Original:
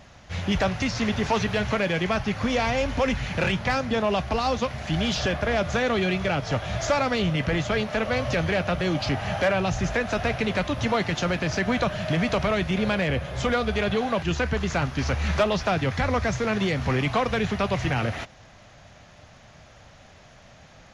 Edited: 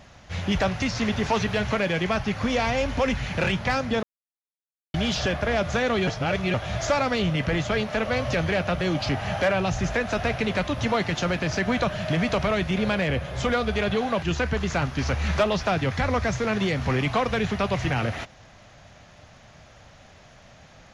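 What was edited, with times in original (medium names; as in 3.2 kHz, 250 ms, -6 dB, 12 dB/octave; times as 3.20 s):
4.03–4.94 s: mute
6.07–6.54 s: reverse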